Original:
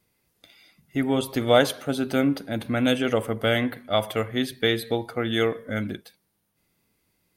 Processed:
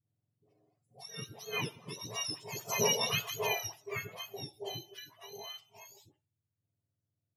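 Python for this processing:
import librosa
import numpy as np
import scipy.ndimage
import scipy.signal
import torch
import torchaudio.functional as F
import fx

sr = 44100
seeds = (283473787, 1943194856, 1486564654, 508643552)

y = fx.octave_mirror(x, sr, pivot_hz=1200.0)
y = fx.doppler_pass(y, sr, speed_mps=11, closest_m=3.7, pass_at_s=2.92)
y = fx.dispersion(y, sr, late='highs', ms=88.0, hz=730.0)
y = F.gain(torch.from_numpy(y), -3.0).numpy()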